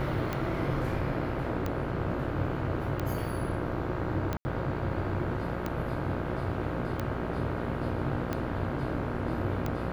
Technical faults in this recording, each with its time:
buzz 60 Hz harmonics 27 -36 dBFS
tick 45 rpm -18 dBFS
4.37–4.45 gap 80 ms

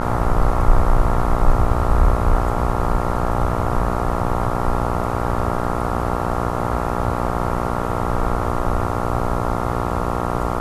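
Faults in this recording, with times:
buzz 60 Hz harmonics 23 -23 dBFS

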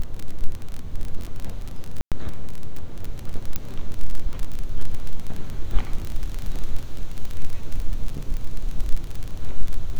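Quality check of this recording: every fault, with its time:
crackle 26/s -23 dBFS
2.01–2.12 gap 0.107 s
3.56 pop -9 dBFS

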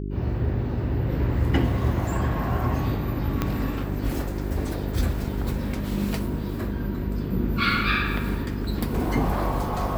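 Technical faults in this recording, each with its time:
hum 50 Hz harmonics 8 -30 dBFS
3.42 pop -10 dBFS

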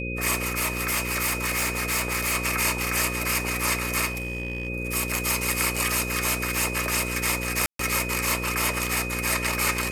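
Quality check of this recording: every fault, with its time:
buzz 60 Hz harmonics 9 -32 dBFS
tone 2500 Hz -32 dBFS
0.55–2.36 clipped -21 dBFS
4.05–4.68 clipped -25.5 dBFS
7.66–7.79 gap 0.133 s

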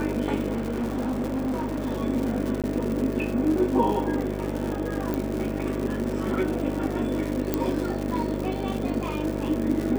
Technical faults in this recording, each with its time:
buzz 50 Hz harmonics 13 -31 dBFS
crackle 170/s -29 dBFS
0.53–1.98 clipped -23.5 dBFS
2.62–2.64 gap 17 ms
5.14 pop -15 dBFS
7.54 pop -9 dBFS

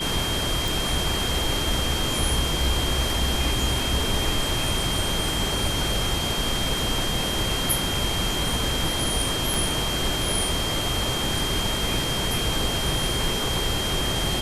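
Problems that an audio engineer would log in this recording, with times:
tone 3200 Hz -28 dBFS
0.68 pop
9.54 pop

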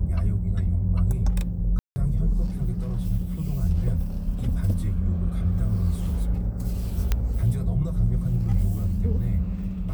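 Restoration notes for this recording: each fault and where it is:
1.79–1.96 gap 0.17 s
7.12 pop -9 dBFS

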